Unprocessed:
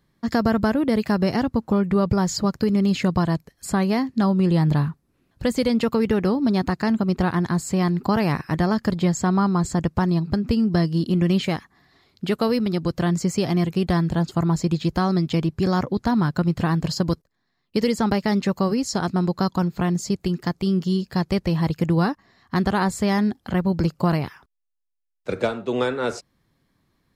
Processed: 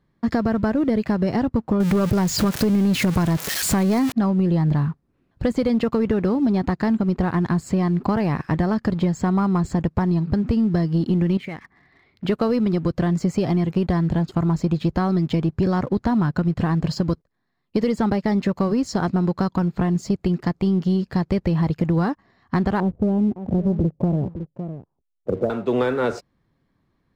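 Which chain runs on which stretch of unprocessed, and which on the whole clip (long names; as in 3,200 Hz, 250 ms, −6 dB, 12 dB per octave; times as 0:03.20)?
0:01.80–0:04.12: spike at every zero crossing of −17 dBFS + leveller curve on the samples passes 1 + envelope flattener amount 50%
0:11.37–0:12.25: low-pass filter 4,800 Hz + parametric band 2,100 Hz +11.5 dB 0.37 octaves + downward compressor 4 to 1, threshold −34 dBFS
0:22.80–0:25.50: inverse Chebyshev low-pass filter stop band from 2,200 Hz, stop band 60 dB + single-tap delay 558 ms −15.5 dB
whole clip: low-pass filter 1,800 Hz 6 dB per octave; downward compressor, threshold −21 dBFS; leveller curve on the samples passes 1; level +2 dB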